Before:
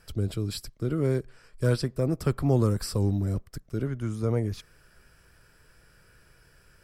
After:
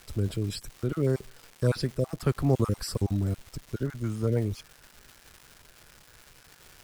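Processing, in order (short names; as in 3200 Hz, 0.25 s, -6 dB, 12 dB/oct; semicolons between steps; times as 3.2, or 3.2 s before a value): random spectral dropouts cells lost 23%; crackle 440/s -39 dBFS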